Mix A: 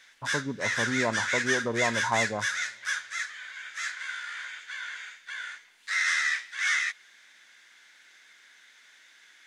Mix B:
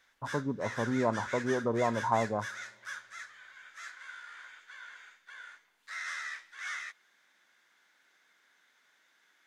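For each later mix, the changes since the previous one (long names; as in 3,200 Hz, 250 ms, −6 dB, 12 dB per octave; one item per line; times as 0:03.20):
background −5.0 dB
master: add flat-topped bell 4,100 Hz −9 dB 2.9 octaves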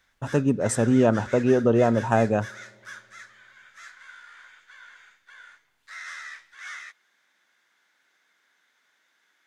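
speech: remove transistor ladder low-pass 1,100 Hz, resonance 80%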